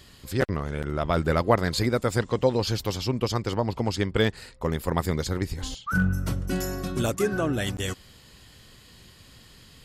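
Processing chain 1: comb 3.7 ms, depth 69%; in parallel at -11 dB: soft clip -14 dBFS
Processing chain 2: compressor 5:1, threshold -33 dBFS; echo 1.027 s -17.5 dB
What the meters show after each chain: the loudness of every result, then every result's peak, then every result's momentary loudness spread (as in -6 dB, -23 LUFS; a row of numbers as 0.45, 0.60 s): -24.0, -37.0 LUFS; -5.0, -20.5 dBFS; 8, 13 LU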